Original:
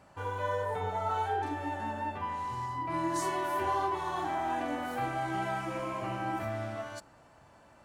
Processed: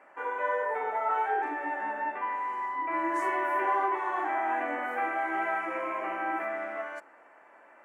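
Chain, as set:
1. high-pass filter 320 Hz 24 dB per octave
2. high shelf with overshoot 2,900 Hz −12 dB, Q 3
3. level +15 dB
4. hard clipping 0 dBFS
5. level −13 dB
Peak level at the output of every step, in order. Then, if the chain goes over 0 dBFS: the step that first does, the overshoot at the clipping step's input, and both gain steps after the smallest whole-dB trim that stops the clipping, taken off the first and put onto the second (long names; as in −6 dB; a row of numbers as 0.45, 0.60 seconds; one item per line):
−20.0, −19.0, −4.0, −4.0, −17.0 dBFS
no step passes full scale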